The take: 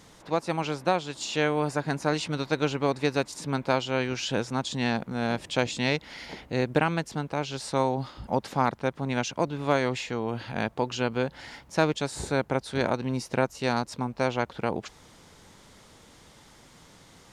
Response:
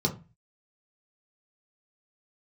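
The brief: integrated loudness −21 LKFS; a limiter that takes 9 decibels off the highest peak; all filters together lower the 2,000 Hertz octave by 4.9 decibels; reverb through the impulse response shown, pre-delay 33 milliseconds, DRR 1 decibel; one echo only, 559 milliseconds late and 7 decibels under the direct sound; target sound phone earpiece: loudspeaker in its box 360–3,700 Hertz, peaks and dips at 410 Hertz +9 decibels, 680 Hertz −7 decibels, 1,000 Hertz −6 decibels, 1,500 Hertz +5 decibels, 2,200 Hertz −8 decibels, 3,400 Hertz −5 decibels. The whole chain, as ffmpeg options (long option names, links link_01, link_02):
-filter_complex "[0:a]equalizer=frequency=2000:width_type=o:gain=-8.5,alimiter=limit=-19dB:level=0:latency=1,aecho=1:1:559:0.447,asplit=2[link_01][link_02];[1:a]atrim=start_sample=2205,adelay=33[link_03];[link_02][link_03]afir=irnorm=-1:irlink=0,volume=-9.5dB[link_04];[link_01][link_04]amix=inputs=2:normalize=0,highpass=360,equalizer=frequency=410:width_type=q:width=4:gain=9,equalizer=frequency=680:width_type=q:width=4:gain=-7,equalizer=frequency=1000:width_type=q:width=4:gain=-6,equalizer=frequency=1500:width_type=q:width=4:gain=5,equalizer=frequency=2200:width_type=q:width=4:gain=-8,equalizer=frequency=3400:width_type=q:width=4:gain=-5,lowpass=frequency=3700:width=0.5412,lowpass=frequency=3700:width=1.3066,volume=5dB"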